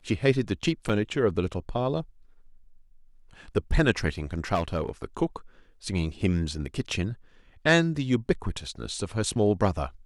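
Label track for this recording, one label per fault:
0.890000	0.900000	dropout 5.5 ms
4.540000	4.890000	clipped -21.5 dBFS

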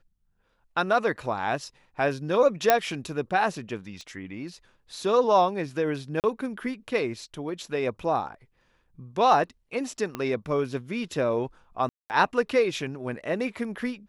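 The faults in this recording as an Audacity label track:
2.700000	2.700000	pop -4 dBFS
4.010000	4.010000	pop -30 dBFS
6.200000	6.240000	dropout 38 ms
10.150000	10.150000	pop -17 dBFS
11.890000	12.100000	dropout 209 ms

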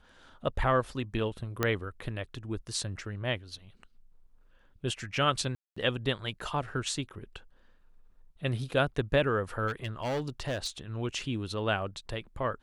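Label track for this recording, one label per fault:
1.630000	1.630000	pop -12 dBFS
5.550000	5.760000	dropout 215 ms
9.670000	10.700000	clipped -28 dBFS

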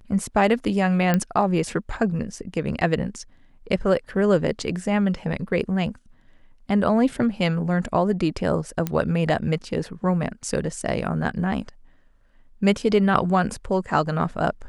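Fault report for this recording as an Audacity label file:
1.140000	1.140000	pop -8 dBFS
8.870000	8.870000	pop -11 dBFS

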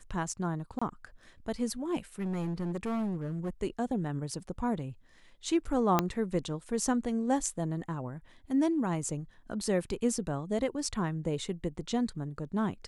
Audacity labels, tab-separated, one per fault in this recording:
0.790000	0.810000	dropout 25 ms
2.190000	3.500000	clipped -29.5 dBFS
5.990000	5.990000	pop -10 dBFS

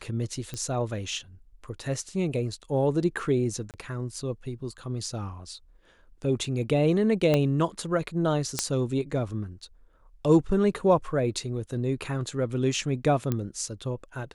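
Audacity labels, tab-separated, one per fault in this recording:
0.540000	0.540000	pop -20 dBFS
3.710000	3.740000	dropout 28 ms
7.340000	7.340000	pop -11 dBFS
8.590000	8.590000	pop -8 dBFS
13.320000	13.320000	pop -14 dBFS

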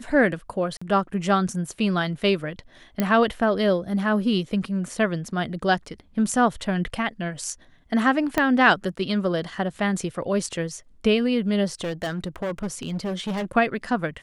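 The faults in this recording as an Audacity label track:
0.770000	0.810000	dropout 45 ms
3.000000	3.000000	pop -9 dBFS
8.380000	8.380000	pop -7 dBFS
11.810000	13.520000	clipped -24 dBFS

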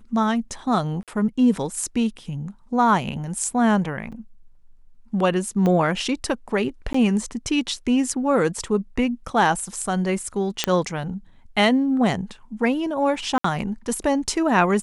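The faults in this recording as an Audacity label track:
1.030000	1.080000	dropout 47 ms
4.120000	4.120000	dropout 4.9 ms
5.660000	5.660000	pop -12 dBFS
6.930000	6.940000	dropout 14 ms
10.640000	10.640000	pop -3 dBFS
13.380000	13.440000	dropout 64 ms

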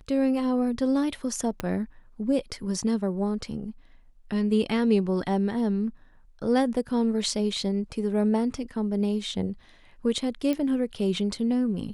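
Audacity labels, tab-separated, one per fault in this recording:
1.600000	1.600000	pop -14 dBFS
10.530000	10.530000	pop -16 dBFS

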